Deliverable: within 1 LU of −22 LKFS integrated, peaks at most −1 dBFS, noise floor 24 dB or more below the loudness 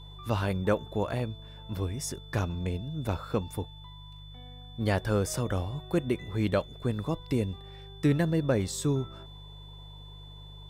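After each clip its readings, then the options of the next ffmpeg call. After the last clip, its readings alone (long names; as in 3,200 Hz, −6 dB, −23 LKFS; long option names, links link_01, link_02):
mains hum 50 Hz; hum harmonics up to 150 Hz; level of the hum −46 dBFS; interfering tone 3,500 Hz; level of the tone −51 dBFS; integrated loudness −31.0 LKFS; sample peak −13.0 dBFS; target loudness −22.0 LKFS
→ -af "bandreject=frequency=50:width_type=h:width=4,bandreject=frequency=100:width_type=h:width=4,bandreject=frequency=150:width_type=h:width=4"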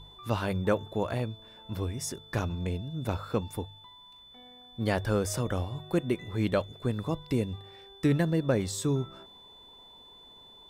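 mains hum none found; interfering tone 3,500 Hz; level of the tone −51 dBFS
→ -af "bandreject=frequency=3500:width=30"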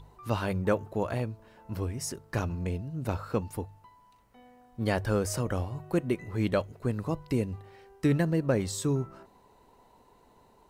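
interfering tone none found; integrated loudness −31.0 LKFS; sample peak −13.0 dBFS; target loudness −22.0 LKFS
→ -af "volume=9dB"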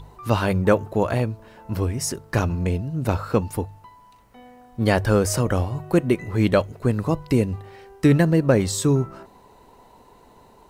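integrated loudness −22.0 LKFS; sample peak −4.0 dBFS; background noise floor −52 dBFS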